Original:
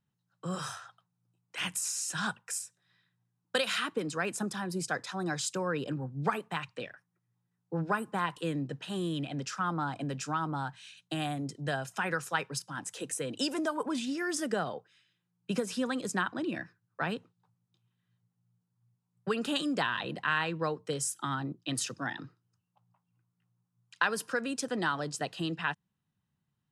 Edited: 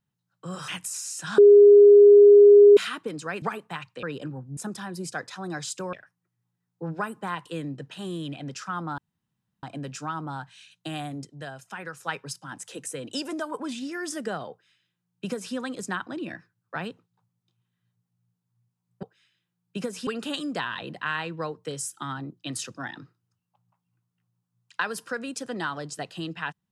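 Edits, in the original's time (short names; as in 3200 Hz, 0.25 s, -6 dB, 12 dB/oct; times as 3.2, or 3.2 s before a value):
0.68–1.59 cut
2.29–3.68 bleep 409 Hz -8.5 dBFS
4.33–5.69 swap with 6.23–6.84
9.89 insert room tone 0.65 s
11.51–12.29 gain -5.5 dB
14.77–15.81 copy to 19.29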